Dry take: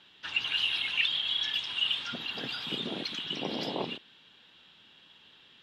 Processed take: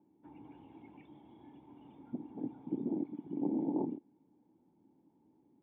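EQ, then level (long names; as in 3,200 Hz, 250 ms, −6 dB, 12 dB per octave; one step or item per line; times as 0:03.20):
formant resonators in series u
high-pass filter 79 Hz
low-shelf EQ 500 Hz +5.5 dB
+5.0 dB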